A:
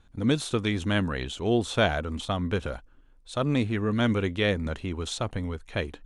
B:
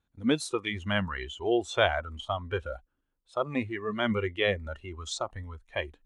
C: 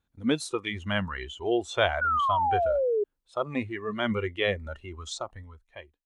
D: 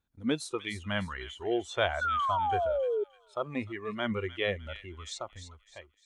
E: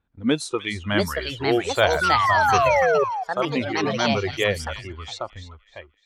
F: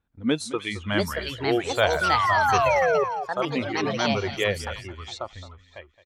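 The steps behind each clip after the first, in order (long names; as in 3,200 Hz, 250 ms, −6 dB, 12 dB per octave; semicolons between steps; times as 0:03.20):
high-pass filter 76 Hz 6 dB per octave; noise reduction from a noise print of the clip's start 16 dB
fade-out on the ending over 1.07 s; sound drawn into the spectrogram fall, 0:02.01–0:03.04, 400–1,500 Hz −25 dBFS
delay with a high-pass on its return 302 ms, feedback 38%, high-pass 2,400 Hz, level −9 dB; level −4 dB
delay with pitch and tempo change per echo 765 ms, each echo +5 semitones, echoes 2; low-pass that shuts in the quiet parts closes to 2,500 Hz, open at −27 dBFS; level +8.5 dB
single-tap delay 217 ms −16.5 dB; level −2.5 dB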